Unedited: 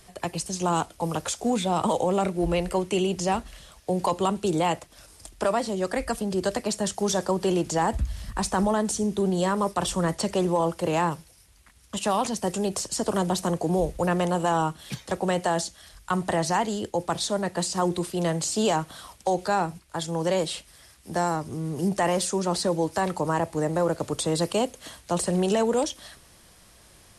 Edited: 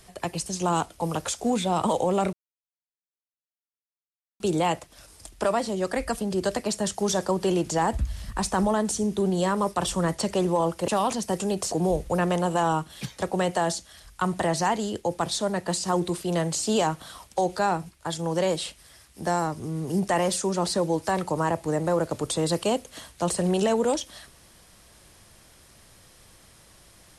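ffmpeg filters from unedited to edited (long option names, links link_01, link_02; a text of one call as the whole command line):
ffmpeg -i in.wav -filter_complex "[0:a]asplit=5[link_01][link_02][link_03][link_04][link_05];[link_01]atrim=end=2.33,asetpts=PTS-STARTPTS,afade=type=out:start_time=2.326:duration=0.004:curve=hsin[link_06];[link_02]atrim=start=2.33:end=4.4,asetpts=PTS-STARTPTS,volume=0[link_07];[link_03]atrim=start=4.4:end=10.882,asetpts=PTS-STARTPTS,afade=type=in:duration=0.004:curve=hsin[link_08];[link_04]atrim=start=12.018:end=12.862[link_09];[link_05]atrim=start=13.608[link_10];[link_06][link_07][link_08]concat=n=3:v=0:a=1[link_11];[link_11][link_09]acrossfade=duration=0.004:curve1=hsin:curve2=hsin[link_12];[link_12][link_10]acrossfade=duration=0.004:curve1=hsin:curve2=hsin" out.wav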